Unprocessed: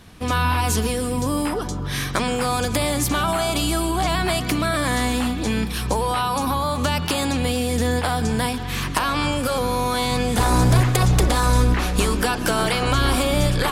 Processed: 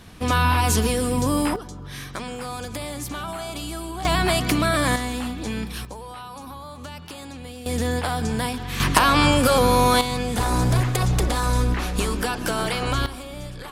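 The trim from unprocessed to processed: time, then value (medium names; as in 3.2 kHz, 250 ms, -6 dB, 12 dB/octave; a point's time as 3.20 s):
+1 dB
from 1.56 s -10 dB
from 4.05 s +1 dB
from 4.96 s -6 dB
from 5.85 s -15.5 dB
from 7.66 s -3 dB
from 8.80 s +5 dB
from 10.01 s -4 dB
from 13.06 s -16 dB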